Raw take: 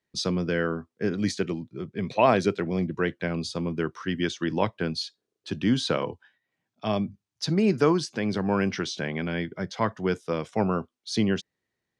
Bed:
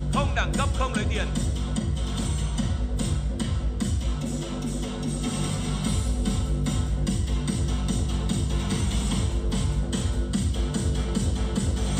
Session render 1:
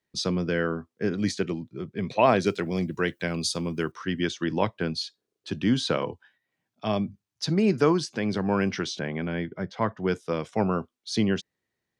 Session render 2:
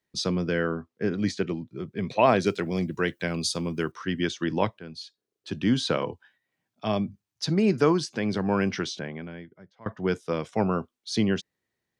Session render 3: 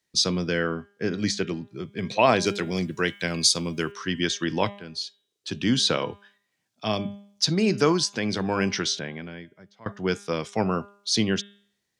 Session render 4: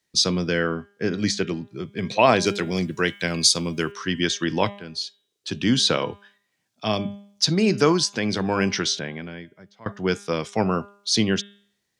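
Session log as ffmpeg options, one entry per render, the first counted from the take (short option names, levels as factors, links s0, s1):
-filter_complex "[0:a]asettb=1/sr,asplit=3[s0][s1][s2];[s0]atrim=end=2.464[s3];[s1]atrim=start=2.46:end=3.92,asetpts=PTS-STARTPTS,afade=t=in:d=0.004:c=qsin,afade=t=out:st=1.456:d=0.004:c=qsin,aemphasis=mode=production:type=75fm[s4];[s2]atrim=start=3.916[s5];[s3][s4]acrossfade=d=0.004:c1=hsin:c2=qsin[s6];[s6][s5]acrossfade=d=0.004:c1=qsin:c2=hsin,asettb=1/sr,asplit=3[s7][s8][s9];[s7]atrim=end=8.994[s10];[s8]atrim=start=8.99:end=10.08,asetpts=PTS-STARTPTS,afade=t=in:d=0.004:c=qsin,afade=t=out:st=1.086:d=0.004:c=qsin,aemphasis=mode=reproduction:type=75kf[s11];[s9]atrim=start=10.076[s12];[s10][s11]acrossfade=d=0.004:c1=hsin:c2=qsin[s13];[s13][s12]acrossfade=d=0.004:c1=qsin:c2=hsin"
-filter_complex "[0:a]asettb=1/sr,asplit=3[s0][s1][s2];[s0]atrim=end=0.594[s3];[s1]atrim=start=0.59:end=1.69,asetpts=PTS-STARTPTS,afade=t=in:d=0.004:c=qsin,afade=t=out:st=1.096:d=0.004:c=qsin,highshelf=f=8400:g=-12[s4];[s2]atrim=start=1.686[s5];[s3][s4]acrossfade=d=0.004:c1=hsin:c2=qsin[s6];[s6][s5]acrossfade=d=0.004:c1=qsin:c2=hsin,asplit=3[s7][s8][s9];[s7]atrim=end=4.79,asetpts=PTS-STARTPTS,afade=t=out:st=4.786:d=0.004:c=hsin:silence=0.16788[s10];[s8]atrim=start=4.79:end=9.86,asetpts=PTS-STARTPTS,afade=t=in:d=0.88:silence=0.16788,afade=t=out:st=4.05:d=1.02:c=qua:silence=0.0707946[s11];[s9]atrim=start=9.86,asetpts=PTS-STARTPTS,afade=t=in:d=0.004:c=hsin:silence=0.0707946[s12];[s10][s11][s12]concat=n=3:v=0:a=1"
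-af "equalizer=f=6200:t=o:w=2.4:g=10,bandreject=f=201.9:t=h:w=4,bandreject=f=403.8:t=h:w=4,bandreject=f=605.7:t=h:w=4,bandreject=f=807.6:t=h:w=4,bandreject=f=1009.5:t=h:w=4,bandreject=f=1211.4:t=h:w=4,bandreject=f=1413.3:t=h:w=4,bandreject=f=1615.2:t=h:w=4,bandreject=f=1817.1:t=h:w=4,bandreject=f=2019:t=h:w=4,bandreject=f=2220.9:t=h:w=4,bandreject=f=2422.8:t=h:w=4,bandreject=f=2624.7:t=h:w=4,bandreject=f=2826.6:t=h:w=4,bandreject=f=3028.5:t=h:w=4,bandreject=f=3230.4:t=h:w=4,bandreject=f=3432.3:t=h:w=4,bandreject=f=3634.2:t=h:w=4,bandreject=f=3836.1:t=h:w=4"
-af "volume=1.33"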